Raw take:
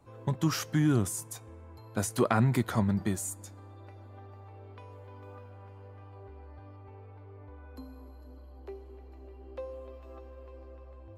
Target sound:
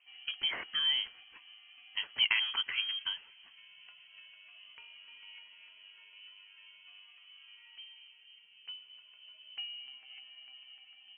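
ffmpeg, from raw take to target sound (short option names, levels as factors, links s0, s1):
-filter_complex "[0:a]acrossover=split=210|2000[s0][s1][s2];[s0]acrusher=bits=2:mix=0:aa=0.5[s3];[s3][s1][s2]amix=inputs=3:normalize=0,lowpass=f=2900:t=q:w=0.5098,lowpass=f=2900:t=q:w=0.6013,lowpass=f=2900:t=q:w=0.9,lowpass=f=2900:t=q:w=2.563,afreqshift=-3400,volume=0.841"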